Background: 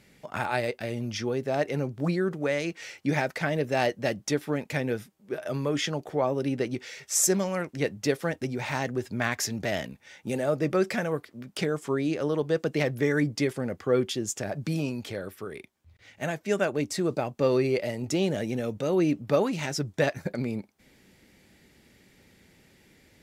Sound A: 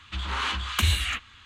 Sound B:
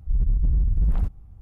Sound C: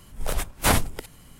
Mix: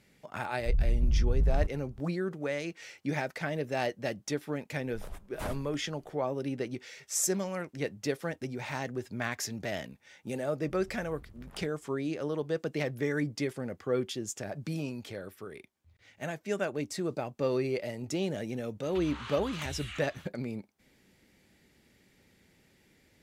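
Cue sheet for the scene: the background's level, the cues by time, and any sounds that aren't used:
background −6 dB
0:00.59: mix in B −5 dB
0:04.75: mix in C −16 dB + high-shelf EQ 2,100 Hz −9.5 dB
0:10.59: mix in B −6 dB + high-pass filter 1,000 Hz 6 dB per octave
0:18.83: mix in A −5 dB + downward compressor 4 to 1, threshold −36 dBFS

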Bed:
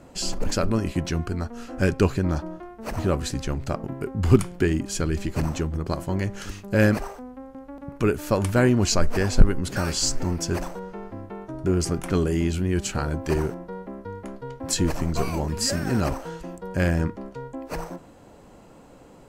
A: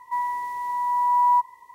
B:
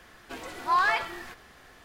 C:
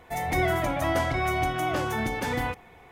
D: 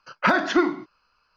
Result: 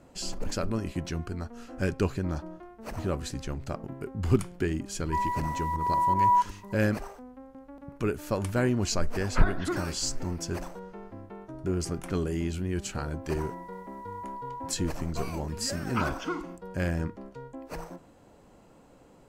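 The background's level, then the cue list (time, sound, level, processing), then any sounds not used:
bed −7 dB
0:05.01: mix in A −3 dB + fake sidechain pumping 160 BPM, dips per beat 1, −16 dB, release 119 ms
0:09.12: mix in D −11.5 dB + high-frequency loss of the air 210 metres
0:13.28: mix in A −17 dB + brickwall limiter −19 dBFS
0:15.72: mix in D −9 dB + phaser with its sweep stopped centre 2,700 Hz, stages 8
not used: B, C

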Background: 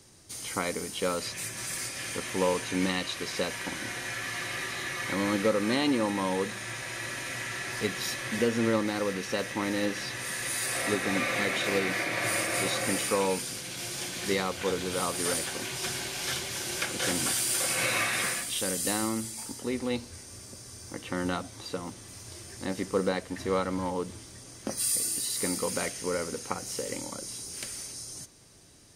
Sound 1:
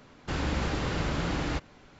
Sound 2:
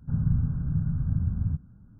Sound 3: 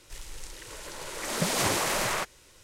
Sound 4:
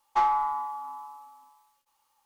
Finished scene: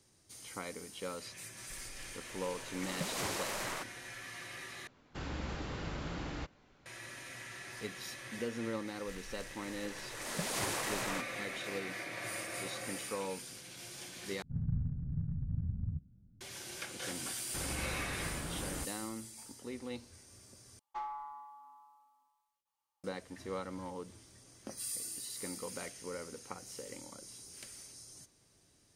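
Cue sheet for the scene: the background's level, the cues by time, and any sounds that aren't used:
background −12 dB
0:01.59: mix in 3 −11 dB
0:04.87: overwrite with 1 −10.5 dB
0:08.97: mix in 3 −10 dB
0:14.42: overwrite with 2 −10 dB + adaptive Wiener filter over 41 samples
0:17.26: mix in 1 −11.5 dB
0:20.79: overwrite with 4 −17.5 dB

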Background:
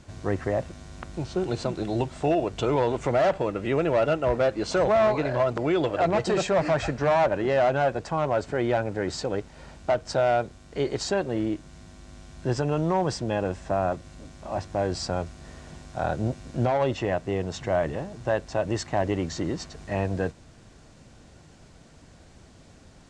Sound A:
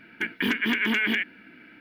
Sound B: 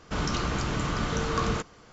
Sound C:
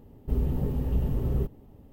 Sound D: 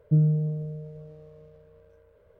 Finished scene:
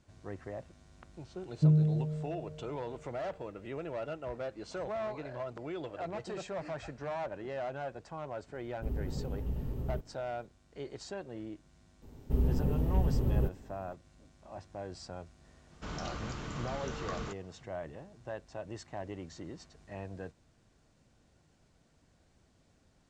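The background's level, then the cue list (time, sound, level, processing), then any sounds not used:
background −16 dB
0:01.51: mix in D −3.5 dB
0:08.54: mix in C −9.5 dB
0:12.02: mix in C −2 dB
0:15.71: mix in B −12 dB
not used: A

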